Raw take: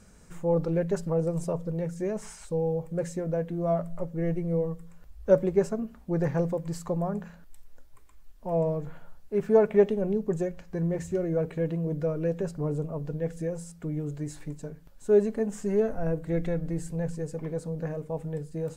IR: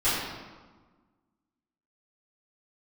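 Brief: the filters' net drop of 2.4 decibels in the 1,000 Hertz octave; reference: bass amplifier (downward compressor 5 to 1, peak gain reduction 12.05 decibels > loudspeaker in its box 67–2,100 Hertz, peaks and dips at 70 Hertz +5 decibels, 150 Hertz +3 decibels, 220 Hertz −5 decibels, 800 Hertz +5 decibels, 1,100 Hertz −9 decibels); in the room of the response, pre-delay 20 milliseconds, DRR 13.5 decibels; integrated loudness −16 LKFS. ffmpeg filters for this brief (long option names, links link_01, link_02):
-filter_complex "[0:a]equalizer=frequency=1000:width_type=o:gain=-6,asplit=2[link_01][link_02];[1:a]atrim=start_sample=2205,adelay=20[link_03];[link_02][link_03]afir=irnorm=-1:irlink=0,volume=-27.5dB[link_04];[link_01][link_04]amix=inputs=2:normalize=0,acompressor=threshold=-28dB:ratio=5,highpass=frequency=67:width=0.5412,highpass=frequency=67:width=1.3066,equalizer=frequency=70:width_type=q:width=4:gain=5,equalizer=frequency=150:width_type=q:width=4:gain=3,equalizer=frequency=220:width_type=q:width=4:gain=-5,equalizer=frequency=800:width_type=q:width=4:gain=5,equalizer=frequency=1100:width_type=q:width=4:gain=-9,lowpass=frequency=2100:width=0.5412,lowpass=frequency=2100:width=1.3066,volume=18dB"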